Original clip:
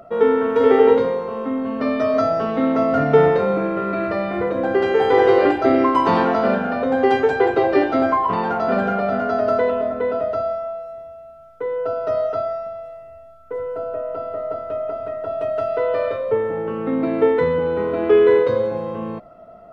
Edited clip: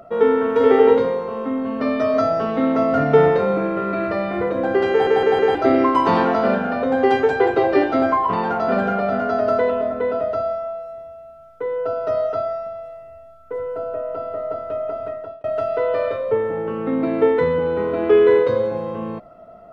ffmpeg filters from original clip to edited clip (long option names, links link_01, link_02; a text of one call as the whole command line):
ffmpeg -i in.wav -filter_complex "[0:a]asplit=6[link_01][link_02][link_03][link_04][link_05][link_06];[link_01]atrim=end=5.072[link_07];[link_02]atrim=start=4.908:end=5.072[link_08];[link_03]atrim=start=4.908:end=5.072[link_09];[link_04]atrim=start=4.908:end=5.072[link_10];[link_05]atrim=start=5.548:end=15.44,asetpts=PTS-STARTPTS,afade=type=out:start_time=9.532:duration=0.36[link_11];[link_06]atrim=start=15.44,asetpts=PTS-STARTPTS,afade=type=in:duration=0.004:curve=hsin[link_12];[link_07][link_08]acrossfade=duration=0.004:curve1=hsin:curve2=hsin[link_13];[link_13][link_09]acrossfade=duration=0.004:curve1=hsin:curve2=hsin[link_14];[link_14][link_10]acrossfade=duration=0.004:curve1=hsin:curve2=hsin[link_15];[link_11][link_12]concat=n=2:v=0:a=1[link_16];[link_15][link_16]acrossfade=duration=0.004:curve1=hsin:curve2=hsin" out.wav